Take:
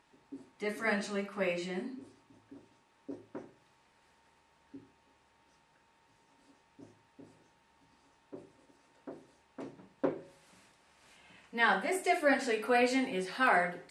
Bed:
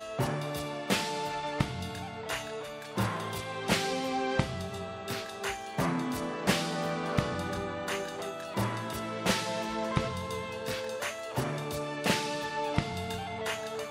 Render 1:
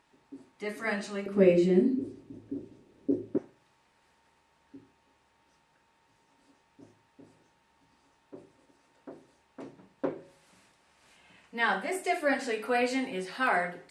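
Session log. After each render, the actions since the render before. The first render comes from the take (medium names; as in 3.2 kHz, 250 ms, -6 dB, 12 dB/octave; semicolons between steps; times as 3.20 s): 1.26–3.38 s: resonant low shelf 600 Hz +13.5 dB, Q 1.5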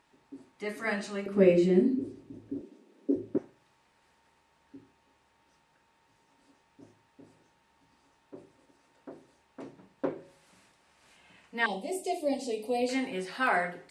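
2.61–3.16 s: steep high-pass 180 Hz 72 dB/octave; 11.66–12.89 s: Butterworth band-stop 1.5 kHz, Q 0.59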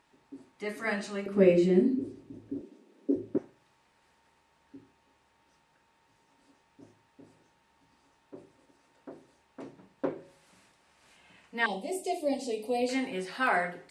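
no audible change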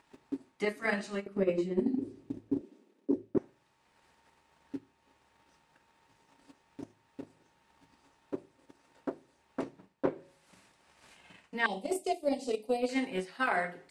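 transient shaper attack +12 dB, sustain -4 dB; reverse; compression 6:1, threshold -27 dBFS, peak gain reduction 17 dB; reverse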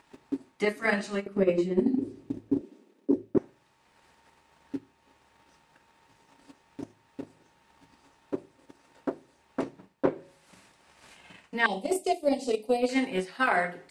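trim +5 dB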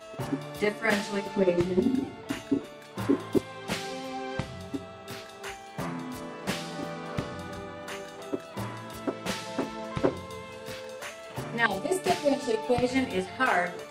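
add bed -4.5 dB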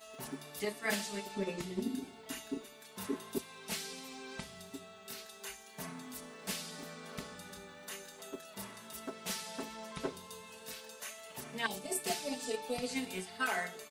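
pre-emphasis filter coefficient 0.8; comb 4.6 ms, depth 63%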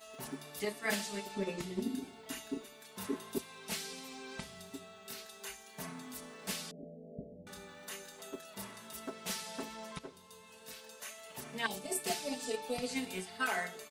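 6.71–7.47 s: steep low-pass 700 Hz 96 dB/octave; 9.99–11.80 s: fade in equal-power, from -12.5 dB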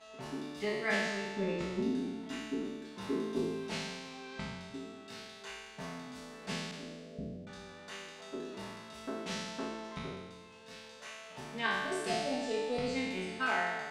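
spectral sustain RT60 1.47 s; distance through air 120 m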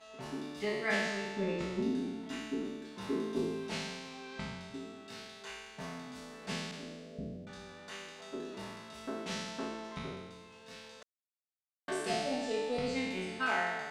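11.03–11.88 s: mute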